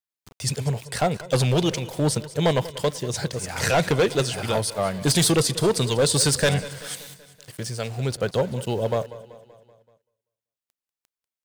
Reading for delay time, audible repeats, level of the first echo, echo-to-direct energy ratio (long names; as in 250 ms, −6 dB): 191 ms, 4, −17.0 dB, −15.5 dB